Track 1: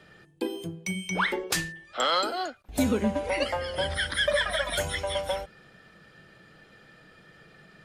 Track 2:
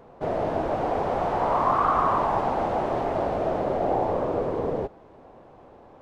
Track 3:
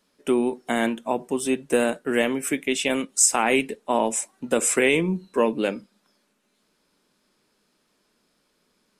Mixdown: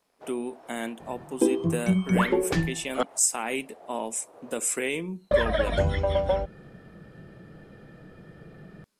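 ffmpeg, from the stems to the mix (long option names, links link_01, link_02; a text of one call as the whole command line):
ffmpeg -i stem1.wav -i stem2.wav -i stem3.wav -filter_complex "[0:a]lowpass=5300,tiltshelf=frequency=940:gain=9.5,adelay=1000,volume=2dB,asplit=3[link_01][link_02][link_03];[link_01]atrim=end=3.03,asetpts=PTS-STARTPTS,afade=type=out:start_time=3.026:duration=0.004:curve=hsin[link_04];[link_02]atrim=start=3.03:end=5.31,asetpts=PTS-STARTPTS,volume=0[link_05];[link_03]atrim=start=5.31,asetpts=PTS-STARTPTS,afade=type=in:duration=0.004:curve=hsin[link_06];[link_04][link_05][link_06]concat=n=3:v=0:a=1[link_07];[1:a]highpass=frequency=820:poles=1,acompressor=threshold=-31dB:ratio=2.5,aeval=exprs='sgn(val(0))*max(abs(val(0))-0.002,0)':channel_layout=same,volume=-10dB[link_08];[2:a]highshelf=frequency=7100:gain=9.5,volume=-10dB,asplit=2[link_09][link_10];[link_10]apad=whole_len=265297[link_11];[link_08][link_11]sidechaincompress=threshold=-40dB:ratio=8:attack=49:release=409[link_12];[link_07][link_12][link_09]amix=inputs=3:normalize=0" out.wav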